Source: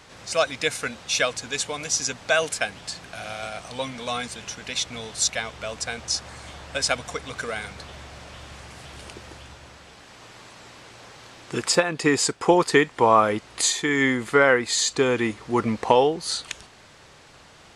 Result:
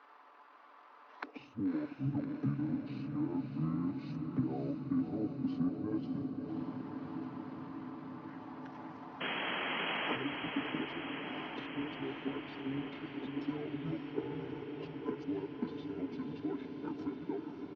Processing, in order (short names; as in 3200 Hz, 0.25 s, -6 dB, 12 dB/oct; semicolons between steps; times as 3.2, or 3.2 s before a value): whole clip reversed; HPF 50 Hz 12 dB/oct; gate -36 dBFS, range -10 dB; resonant low shelf 340 Hz -7 dB, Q 3; notches 60/120/180/240/300/360/420/480/540 Hz; comb 4.2 ms, depth 55%; compressor 8:1, threshold -28 dBFS, peak gain reduction 19.5 dB; transient shaper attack -2 dB, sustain -7 dB; auto-wah 220–2100 Hz, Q 2.7, down, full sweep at -32.5 dBFS; painted sound noise, 9.2–10.16, 260–5400 Hz -45 dBFS; pitch shift -8.5 st; diffused feedback echo 0.581 s, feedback 76%, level -6 dB; gain +8.5 dB